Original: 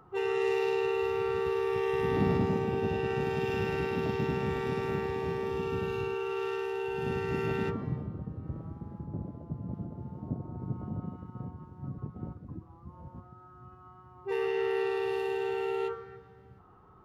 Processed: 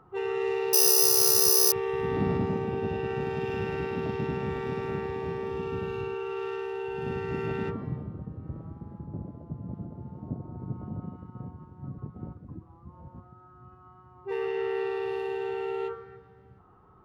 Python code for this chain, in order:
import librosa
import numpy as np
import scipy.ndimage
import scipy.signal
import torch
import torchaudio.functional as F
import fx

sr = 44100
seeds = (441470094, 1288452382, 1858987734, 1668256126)

y = fx.high_shelf(x, sr, hz=5100.0, db=-10.0)
y = fx.resample_bad(y, sr, factor=8, down='none', up='zero_stuff', at=(0.73, 1.72))